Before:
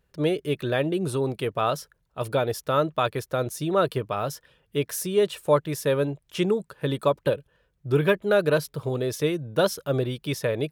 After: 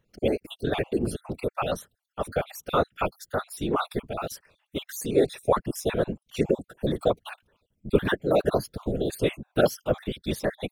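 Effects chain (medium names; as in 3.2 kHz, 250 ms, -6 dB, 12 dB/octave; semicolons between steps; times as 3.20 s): random holes in the spectrogram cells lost 47%; whisper effect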